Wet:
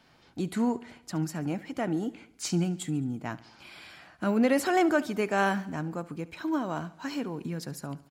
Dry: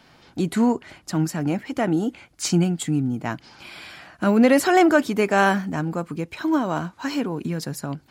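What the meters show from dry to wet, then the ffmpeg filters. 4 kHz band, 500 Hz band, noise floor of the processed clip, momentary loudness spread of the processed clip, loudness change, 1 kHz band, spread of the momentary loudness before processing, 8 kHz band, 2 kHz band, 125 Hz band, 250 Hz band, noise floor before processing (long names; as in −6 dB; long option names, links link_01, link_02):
−8.0 dB, −8.0 dB, −60 dBFS, 15 LU, −8.0 dB, −8.0 dB, 15 LU, −8.0 dB, −8.0 dB, −8.0 dB, −8.0 dB, −56 dBFS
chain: -af "aecho=1:1:71|142|213|284|355:0.106|0.0593|0.0332|0.0186|0.0104,volume=-8dB"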